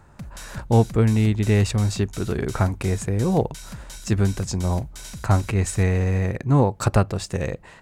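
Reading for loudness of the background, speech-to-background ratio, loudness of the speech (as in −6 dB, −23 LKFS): −39.0 LKFS, 16.5 dB, −22.5 LKFS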